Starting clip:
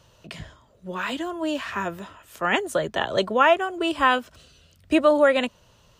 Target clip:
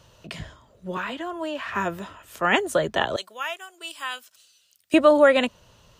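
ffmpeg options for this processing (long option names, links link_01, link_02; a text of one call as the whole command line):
ffmpeg -i in.wav -filter_complex "[0:a]asettb=1/sr,asplit=3[link_01][link_02][link_03];[link_01]atrim=end=0.974[link_04];[link_02]atrim=start=0.97:end=1.75,asetpts=PTS-STARTPTS,afade=type=in:duration=0.004:curve=qsin,afade=type=out:start_time=0.776:duration=0.004:curve=qsin,acrossover=split=470|3000[link_05][link_06][link_07];[link_05]acompressor=threshold=-40dB:ratio=4[link_08];[link_06]acompressor=threshold=-30dB:ratio=4[link_09];[link_07]acompressor=threshold=-53dB:ratio=4[link_10];[link_08][link_09][link_10]amix=inputs=3:normalize=0[link_11];[link_03]atrim=start=1.746[link_12];[link_04][link_11]acrossfade=duration=0.004:curve1=hsin:curve2=qsin[link_13];[link_13][link_12]acrossfade=duration=0.004:curve1=qsin:curve2=hsin,asettb=1/sr,asplit=3[link_14][link_15][link_16];[link_14]atrim=end=3.164[link_17];[link_15]atrim=start=3.16:end=4.94,asetpts=PTS-STARTPTS,afade=type=in:duration=0.004:curve=qsin,afade=type=out:start_time=1.776:duration=0.004:curve=qsin,aderivative[link_18];[link_16]atrim=start=4.936[link_19];[link_17][link_18]acrossfade=duration=0.004:curve1=hsin:curve2=qsin[link_20];[link_20][link_19]acrossfade=duration=0.004:curve1=qsin:curve2=hsin,volume=2dB" out.wav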